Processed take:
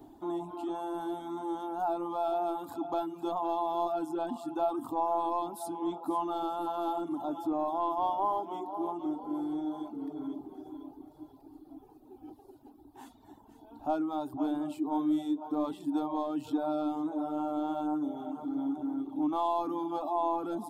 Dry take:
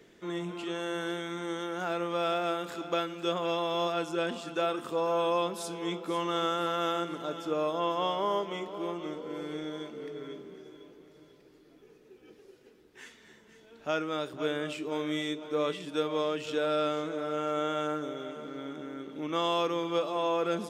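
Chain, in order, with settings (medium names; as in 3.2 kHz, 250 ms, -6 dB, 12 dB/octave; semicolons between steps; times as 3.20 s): saturation -21.5 dBFS, distortion -19 dB; FFT filter 110 Hz 0 dB, 190 Hz -17 dB, 280 Hz +7 dB, 480 Hz -20 dB, 800 Hz +9 dB, 1.2 kHz -10 dB, 2 kHz -29 dB, 4.1 kHz -15 dB, 5.9 kHz -21 dB, 12 kHz -3 dB; in parallel at +0.5 dB: peak limiter -44 dBFS, peak gain reduction 20.5 dB; on the sum: reverb removal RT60 0.83 s; trim +4 dB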